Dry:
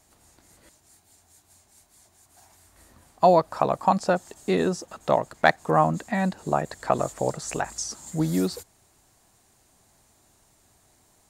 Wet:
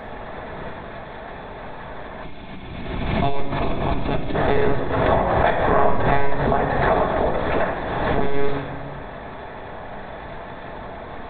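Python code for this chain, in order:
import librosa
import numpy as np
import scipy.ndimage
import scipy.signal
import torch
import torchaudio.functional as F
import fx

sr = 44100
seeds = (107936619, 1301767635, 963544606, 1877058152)

y = fx.bin_compress(x, sr, power=0.4)
y = fx.lpc_monotone(y, sr, seeds[0], pitch_hz=140.0, order=16)
y = fx.room_shoebox(y, sr, seeds[1], volume_m3=1200.0, walls='mixed', distance_m=1.5)
y = fx.spec_box(y, sr, start_s=2.24, length_s=2.11, low_hz=400.0, high_hz=2100.0, gain_db=-10)
y = fx.pre_swell(y, sr, db_per_s=28.0)
y = y * librosa.db_to_amplitude(-6.0)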